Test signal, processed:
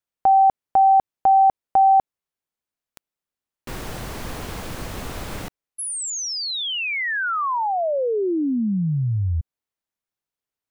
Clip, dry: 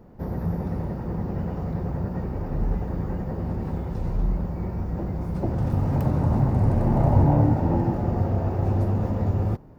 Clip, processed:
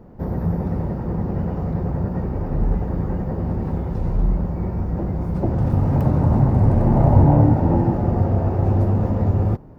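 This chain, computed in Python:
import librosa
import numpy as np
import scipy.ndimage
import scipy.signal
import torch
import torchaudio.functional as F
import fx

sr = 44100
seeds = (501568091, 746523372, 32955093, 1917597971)

y = fx.high_shelf(x, sr, hz=2200.0, db=-7.0)
y = F.gain(torch.from_numpy(y), 5.0).numpy()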